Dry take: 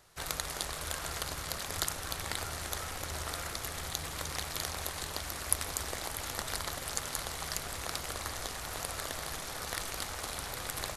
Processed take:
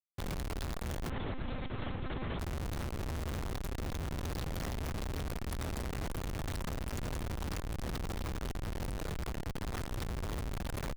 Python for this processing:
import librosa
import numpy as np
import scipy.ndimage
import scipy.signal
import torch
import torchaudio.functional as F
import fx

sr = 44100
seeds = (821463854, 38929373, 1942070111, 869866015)

y = fx.low_shelf(x, sr, hz=430.0, db=4.0)
y = fx.schmitt(y, sr, flips_db=-31.5)
y = fx.lpc_monotone(y, sr, seeds[0], pitch_hz=260.0, order=8, at=(1.1, 2.39))
y = F.gain(torch.from_numpy(y), 1.0).numpy()